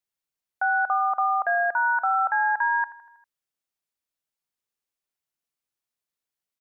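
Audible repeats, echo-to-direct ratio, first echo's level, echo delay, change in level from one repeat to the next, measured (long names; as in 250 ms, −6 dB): 4, −14.5 dB, −16.0 dB, 80 ms, −5.0 dB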